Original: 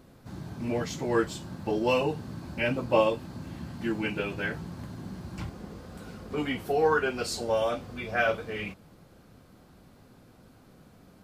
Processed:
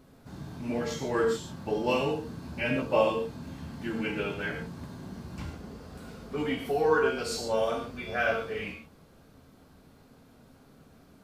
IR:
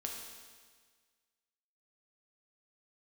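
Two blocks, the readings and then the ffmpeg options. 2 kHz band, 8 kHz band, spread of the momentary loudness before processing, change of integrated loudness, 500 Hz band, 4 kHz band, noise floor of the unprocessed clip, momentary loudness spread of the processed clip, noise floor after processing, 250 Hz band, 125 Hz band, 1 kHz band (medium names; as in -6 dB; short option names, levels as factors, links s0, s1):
-1.0 dB, -0.5 dB, 16 LU, -0.5 dB, -0.5 dB, -1.0 dB, -56 dBFS, 17 LU, -57 dBFS, -1.0 dB, -2.5 dB, -1.0 dB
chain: -filter_complex "[1:a]atrim=start_sample=2205,atrim=end_sample=6615[s0];[0:a][s0]afir=irnorm=-1:irlink=0"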